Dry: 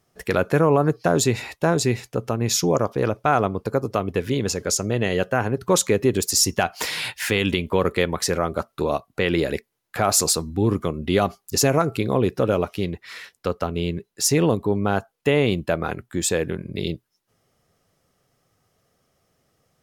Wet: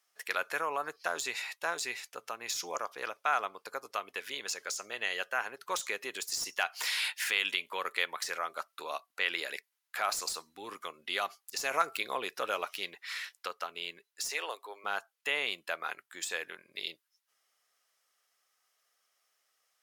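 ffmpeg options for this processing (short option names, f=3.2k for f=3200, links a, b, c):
-filter_complex "[0:a]asettb=1/sr,asplit=3[a][b][c];[a]atrim=end=14.314[d];[b]atrim=start=14.31:end=14.84,asetpts=PTS-STARTPTS,afade=t=in:d=0.004:c=qsin,afade=t=out:st=0.526:d=0.004:c=qsin,highpass=f=400:w=0.5412,highpass=f=400:w=1.3066[e];[c]atrim=start=14.836[f];[d][e]acrossfade=d=0.004:c1=hsin:c2=qsin[g];[g][f]acrossfade=d=0.004:c1=qsin:c2=hsin,asplit=3[h][i][j];[h]atrim=end=11.712[k];[i]atrim=start=11.708:end=13.472,asetpts=PTS-STARTPTS,volume=3.5dB[l];[j]atrim=start=13.468[m];[k][l]acrossfade=d=0.004:c1=hsin:c2=hsin[n];[n][m]acrossfade=d=0.004:c1=hsin:c2=hsin,highpass=1.3k,deesser=0.5,volume=-3.5dB"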